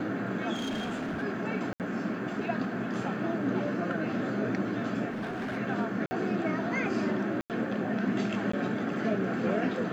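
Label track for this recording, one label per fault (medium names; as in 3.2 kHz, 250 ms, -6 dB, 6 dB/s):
0.530000	1.240000	clipped -29.5 dBFS
1.730000	1.800000	dropout 68 ms
5.090000	5.580000	clipped -31 dBFS
6.060000	6.110000	dropout 50 ms
7.410000	7.500000	dropout 88 ms
8.520000	8.530000	dropout 14 ms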